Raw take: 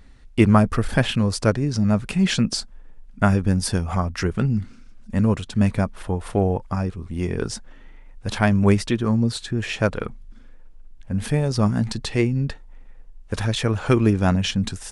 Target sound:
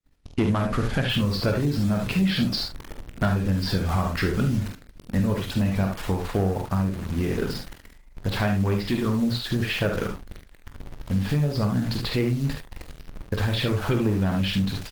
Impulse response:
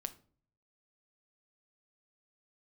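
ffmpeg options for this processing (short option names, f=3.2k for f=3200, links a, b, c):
-filter_complex "[0:a]aresample=11025,asoftclip=type=tanh:threshold=-11dB,aresample=44100,acontrast=80,bandreject=f=77.8:t=h:w=4,bandreject=f=155.6:t=h:w=4,acrusher=bits=6:dc=4:mix=0:aa=0.000001,agate=range=-33dB:threshold=-30dB:ratio=3:detection=peak,asplit=2[a][b];[b]adelay=41,volume=-12.5dB[c];[a][c]amix=inputs=2:normalize=0,asplit=2[d][e];[e]aecho=0:1:21|48|73:0.299|0.422|0.473[f];[d][f]amix=inputs=2:normalize=0,acompressor=threshold=-15dB:ratio=4,volume=-5dB" -ar 48000 -c:a libopus -b:a 16k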